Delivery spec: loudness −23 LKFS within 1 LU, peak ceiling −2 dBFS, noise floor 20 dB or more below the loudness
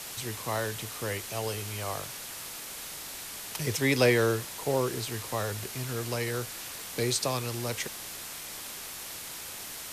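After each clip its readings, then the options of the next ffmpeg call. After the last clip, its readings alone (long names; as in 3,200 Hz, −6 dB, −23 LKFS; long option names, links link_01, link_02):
background noise floor −41 dBFS; target noise floor −52 dBFS; integrated loudness −31.5 LKFS; sample peak −10.5 dBFS; target loudness −23.0 LKFS
→ -af "afftdn=noise_reduction=11:noise_floor=-41"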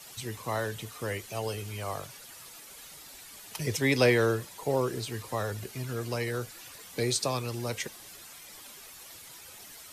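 background noise floor −49 dBFS; target noise floor −51 dBFS
→ -af "afftdn=noise_reduction=6:noise_floor=-49"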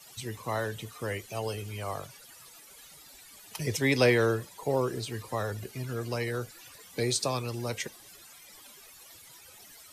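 background noise floor −53 dBFS; integrated loudness −31.0 LKFS; sample peak −10.5 dBFS; target loudness −23.0 LKFS
→ -af "volume=8dB"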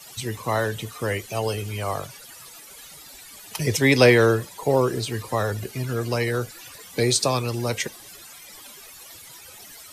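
integrated loudness −23.0 LKFS; sample peak −2.5 dBFS; background noise floor −45 dBFS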